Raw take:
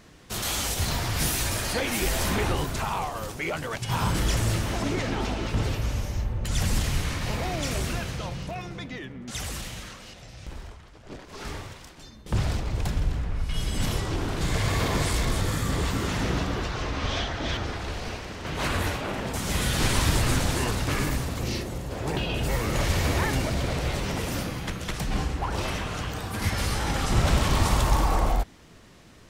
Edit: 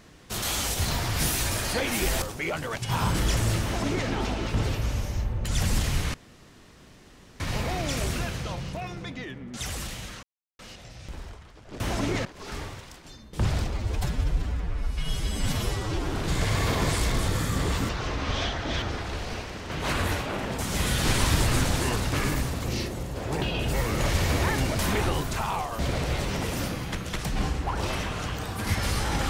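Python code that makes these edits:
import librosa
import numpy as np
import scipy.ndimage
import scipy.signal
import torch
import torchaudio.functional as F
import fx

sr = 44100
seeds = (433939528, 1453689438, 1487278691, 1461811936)

y = fx.edit(x, sr, fx.move(start_s=2.22, length_s=1.0, to_s=23.54),
    fx.duplicate(start_s=4.63, length_s=0.45, to_s=11.18),
    fx.insert_room_tone(at_s=7.14, length_s=1.26),
    fx.insert_silence(at_s=9.97, length_s=0.36),
    fx.stretch_span(start_s=12.66, length_s=1.6, factor=1.5),
    fx.cut(start_s=16.02, length_s=0.62), tone=tone)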